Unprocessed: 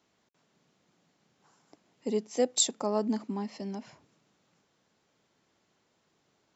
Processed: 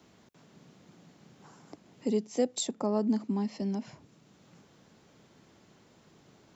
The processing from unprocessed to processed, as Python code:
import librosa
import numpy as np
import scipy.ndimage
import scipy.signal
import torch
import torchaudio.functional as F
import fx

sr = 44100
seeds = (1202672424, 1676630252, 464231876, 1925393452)

y = fx.low_shelf(x, sr, hz=310.0, db=11.0)
y = fx.band_squash(y, sr, depth_pct=40)
y = y * librosa.db_to_amplitude(-3.0)